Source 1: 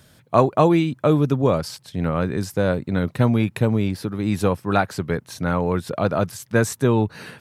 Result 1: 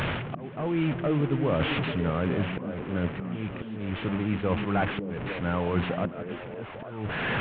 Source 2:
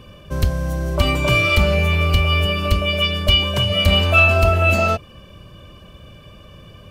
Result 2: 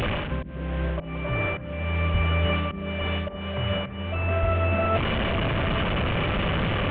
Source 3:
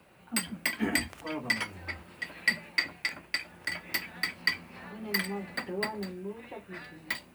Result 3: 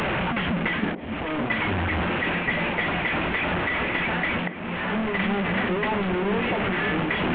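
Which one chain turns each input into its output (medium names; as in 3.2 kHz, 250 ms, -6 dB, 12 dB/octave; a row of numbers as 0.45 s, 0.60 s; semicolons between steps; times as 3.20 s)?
one-bit delta coder 16 kbps, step -24.5 dBFS; reverse; compression 5:1, threshold -28 dBFS; reverse; slow attack 486 ms; repeats whose band climbs or falls 282 ms, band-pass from 210 Hz, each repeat 0.7 oct, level -4 dB; peak normalisation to -12 dBFS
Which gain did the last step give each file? +4.0 dB, +6.5 dB, +6.0 dB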